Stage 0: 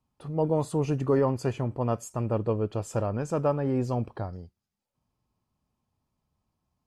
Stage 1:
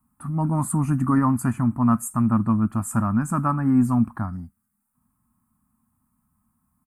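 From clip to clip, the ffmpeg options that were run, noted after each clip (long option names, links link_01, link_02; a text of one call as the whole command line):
ffmpeg -i in.wav -af "firequalizer=gain_entry='entry(140,0);entry(230,11);entry(450,-28);entry(660,-8);entry(1200,8);entry(3200,-18);entry(5700,-12);entry(8700,12)':delay=0.05:min_phase=1,volume=5.5dB" out.wav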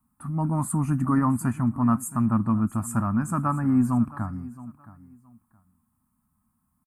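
ffmpeg -i in.wav -af "aecho=1:1:670|1340:0.126|0.0277,volume=-2.5dB" out.wav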